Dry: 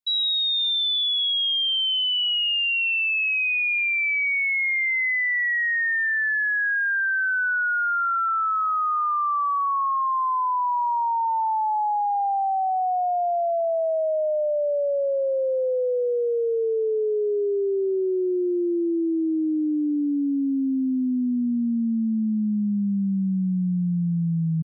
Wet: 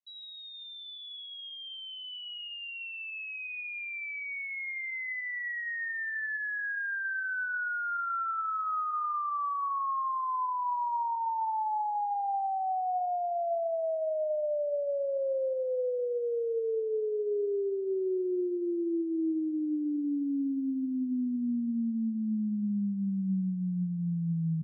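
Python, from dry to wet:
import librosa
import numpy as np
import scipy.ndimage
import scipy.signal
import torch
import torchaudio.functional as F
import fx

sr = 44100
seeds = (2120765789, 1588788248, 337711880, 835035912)

y = scipy.signal.sosfilt(scipy.signal.butter(2, 1600.0, 'lowpass', fs=sr, output='sos'), x)
y = fx.rev_plate(y, sr, seeds[0], rt60_s=2.4, hf_ratio=0.8, predelay_ms=0, drr_db=15.0)
y = F.gain(torch.from_numpy(y), -7.5).numpy()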